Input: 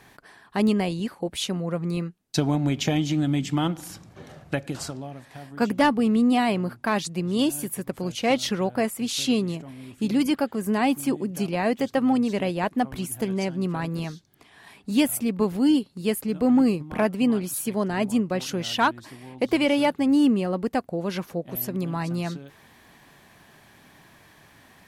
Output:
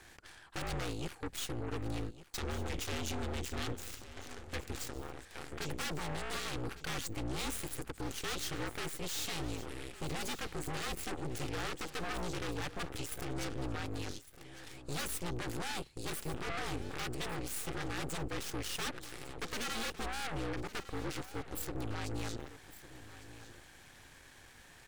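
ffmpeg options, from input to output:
-af "equalizer=f=7.5k:w=2:g=6,aeval=exprs='0.355*sin(PI/2*4.47*val(0)/0.355)':c=same,alimiter=limit=-18.5dB:level=0:latency=1:release=35,afreqshift=-59,aeval=exprs='0.335*(cos(1*acos(clip(val(0)/0.335,-1,1)))-cos(1*PI/2))+0.0841*(cos(3*acos(clip(val(0)/0.335,-1,1)))-cos(3*PI/2))+0.0376*(cos(4*acos(clip(val(0)/0.335,-1,1)))-cos(4*PI/2))+0.0299*(cos(5*acos(clip(val(0)/0.335,-1,1)))-cos(5*PI/2))+0.0422*(cos(7*acos(clip(val(0)/0.335,-1,1)))-cos(7*PI/2))':c=same,equalizer=f=125:t=o:w=0.33:g=-4,equalizer=f=200:t=o:w=0.33:g=-11,equalizer=f=630:t=o:w=0.33:g=-7,equalizer=f=1k:t=o:w=0.33:g=-5,equalizer=f=12.5k:t=o:w=0.33:g=-5,asoftclip=type=tanh:threshold=-25dB,aecho=1:1:1155:0.178,volume=-4.5dB"

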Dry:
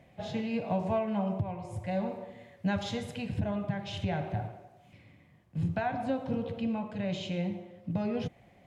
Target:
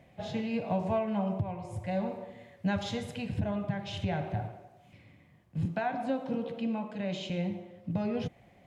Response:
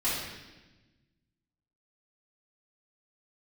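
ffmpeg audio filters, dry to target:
-filter_complex "[0:a]asettb=1/sr,asplit=3[a][b][c];[a]atrim=end=5.654[d];[b]atrim=start=5.65:end=7.3,asetpts=PTS-STARTPTS,afade=t=in:d=0.004:c=qsin,afade=t=out:st=1.646:d=0.004:c=qsin,highpass=f=170:w=0.5412,highpass=f=170:w=1.3066[e];[c]atrim=start=7.296[f];[d][e]acrossfade=d=0.004:c1=hsin:c2=qsin[g];[g][f]acrossfade=d=0.004:c1=qsin:c2=hsin"

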